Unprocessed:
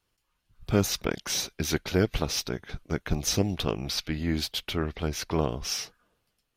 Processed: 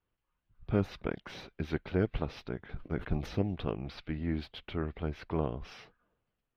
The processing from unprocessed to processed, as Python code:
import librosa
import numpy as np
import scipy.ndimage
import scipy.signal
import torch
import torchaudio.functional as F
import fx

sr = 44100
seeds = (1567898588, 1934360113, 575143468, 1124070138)

y = fx.air_absorb(x, sr, metres=450.0)
y = fx.sustainer(y, sr, db_per_s=120.0, at=(2.63, 3.29), fade=0.02)
y = y * 10.0 ** (-4.5 / 20.0)